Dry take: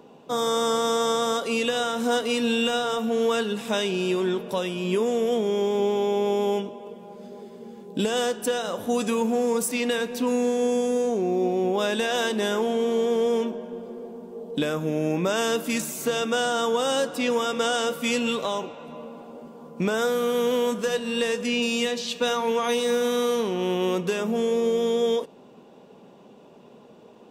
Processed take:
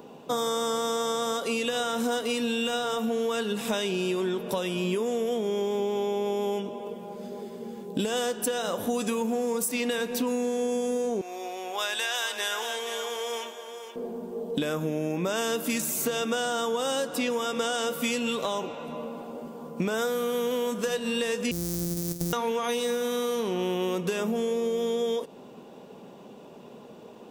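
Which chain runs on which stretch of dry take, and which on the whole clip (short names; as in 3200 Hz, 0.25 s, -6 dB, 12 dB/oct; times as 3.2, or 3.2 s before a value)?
11.21–13.96 HPF 1100 Hz + echo 0.471 s -10 dB
21.51–22.33 sample sorter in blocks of 256 samples + EQ curve 390 Hz 0 dB, 930 Hz -22 dB, 2900 Hz -17 dB, 5700 Hz +2 dB + compressor 4:1, threshold -28 dBFS
whole clip: high shelf 11000 Hz +9 dB; compressor, threshold -28 dBFS; gain +3 dB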